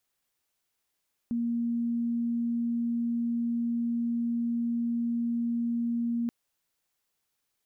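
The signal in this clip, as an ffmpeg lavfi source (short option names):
-f lavfi -i "sine=f=235:d=4.98:r=44100,volume=-7.94dB"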